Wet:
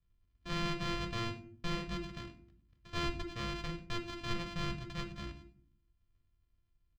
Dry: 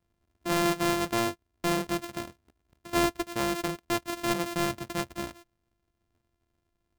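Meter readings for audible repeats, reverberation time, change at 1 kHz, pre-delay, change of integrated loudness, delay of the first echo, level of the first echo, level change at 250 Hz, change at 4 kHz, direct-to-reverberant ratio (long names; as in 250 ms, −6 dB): 1, 0.50 s, −11.5 dB, 3 ms, −10.0 dB, 97 ms, −19.5 dB, −11.0 dB, −6.0 dB, 5.5 dB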